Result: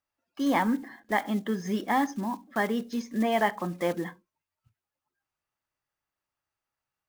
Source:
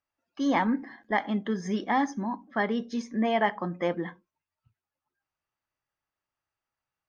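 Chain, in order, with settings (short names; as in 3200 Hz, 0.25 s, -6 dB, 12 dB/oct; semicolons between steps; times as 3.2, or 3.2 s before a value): block floating point 5-bit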